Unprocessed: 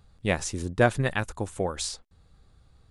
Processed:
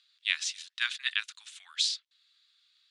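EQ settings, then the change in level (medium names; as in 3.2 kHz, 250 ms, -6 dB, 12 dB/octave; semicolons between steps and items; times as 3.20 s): Bessel high-pass 2.5 kHz, order 8; distance through air 80 m; peaking EQ 3.6 kHz +13.5 dB 1.3 oct; 0.0 dB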